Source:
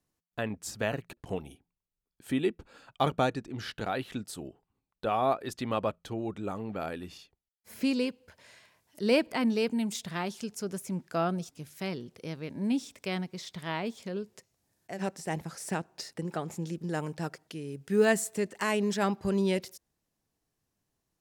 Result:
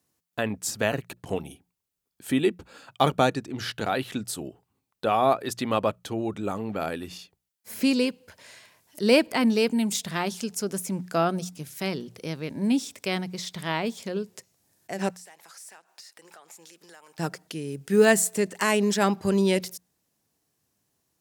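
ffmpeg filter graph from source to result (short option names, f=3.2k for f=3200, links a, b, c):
-filter_complex "[0:a]asettb=1/sr,asplit=3[a][b][c];[a]atrim=end=15.104[d];[b]atrim=start=15.1:end=17.19,asetpts=PTS-STARTPTS,afade=t=in:d=0.004:c=qsin,afade=t=out:st=2.086:d=0.004:c=qsin,highpass=900,acompressor=threshold=-54dB:ratio=4:attack=3.2:release=140:knee=1:detection=peak,aeval=exprs='clip(val(0),-1,0.00376)':c=same[e];[c]atrim=start=17.186[f];[d][e]acrossfade=d=0.004:c1=hsin:c2=qsin[g];[g][f]acrossfade=d=0.004:c1=qsin:c2=hsin,highpass=79,highshelf=f=5.3k:g=6,bandreject=f=60:t=h:w=6,bandreject=f=120:t=h:w=6,bandreject=f=180:t=h:w=6,volume=5.5dB"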